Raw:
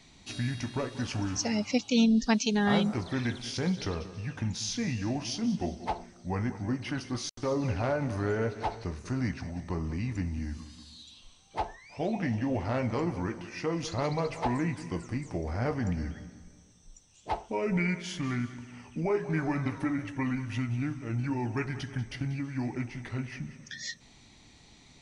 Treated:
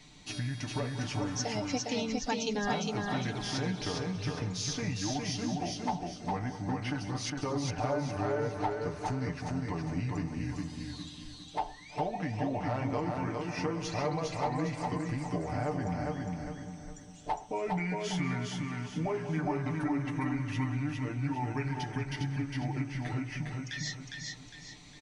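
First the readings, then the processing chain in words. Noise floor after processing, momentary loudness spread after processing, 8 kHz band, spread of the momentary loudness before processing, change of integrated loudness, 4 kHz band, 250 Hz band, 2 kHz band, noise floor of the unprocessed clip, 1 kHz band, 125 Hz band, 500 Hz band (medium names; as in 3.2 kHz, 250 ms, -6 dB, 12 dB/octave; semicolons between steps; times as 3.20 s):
-49 dBFS, 6 LU, -0.5 dB, 11 LU, -2.5 dB, -1.0 dB, -4.0 dB, -2.0 dB, -57 dBFS, +1.5 dB, -1.5 dB, -2.0 dB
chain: comb 6.7 ms, depth 60%; dynamic bell 780 Hz, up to +7 dB, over -47 dBFS, Q 2; compression 2.5:1, threshold -34 dBFS, peak gain reduction 10.5 dB; feedback delay 407 ms, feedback 38%, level -3 dB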